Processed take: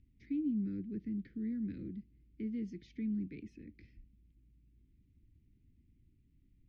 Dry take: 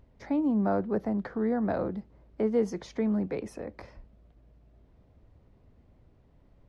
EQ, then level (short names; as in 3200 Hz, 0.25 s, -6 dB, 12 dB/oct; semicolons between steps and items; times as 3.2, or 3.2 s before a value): elliptic band-stop 310–2200 Hz, stop band 70 dB; air absorption 210 m; -7.0 dB